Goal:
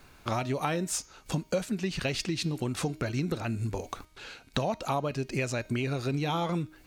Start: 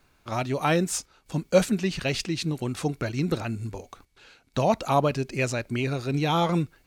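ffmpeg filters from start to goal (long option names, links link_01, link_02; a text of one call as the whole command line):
ffmpeg -i in.wav -af "acompressor=threshold=-36dB:ratio=6,bandreject=frequency=311.5:width_type=h:width=4,bandreject=frequency=623:width_type=h:width=4,bandreject=frequency=934.5:width_type=h:width=4,bandreject=frequency=1246:width_type=h:width=4,bandreject=frequency=1557.5:width_type=h:width=4,bandreject=frequency=1869:width_type=h:width=4,bandreject=frequency=2180.5:width_type=h:width=4,bandreject=frequency=2492:width_type=h:width=4,bandreject=frequency=2803.5:width_type=h:width=4,bandreject=frequency=3115:width_type=h:width=4,bandreject=frequency=3426.5:width_type=h:width=4,bandreject=frequency=3738:width_type=h:width=4,bandreject=frequency=4049.5:width_type=h:width=4,bandreject=frequency=4361:width_type=h:width=4,bandreject=frequency=4672.5:width_type=h:width=4,bandreject=frequency=4984:width_type=h:width=4,bandreject=frequency=5295.5:width_type=h:width=4,bandreject=frequency=5607:width_type=h:width=4,bandreject=frequency=5918.5:width_type=h:width=4,bandreject=frequency=6230:width_type=h:width=4,bandreject=frequency=6541.5:width_type=h:width=4,bandreject=frequency=6853:width_type=h:width=4,volume=8dB" out.wav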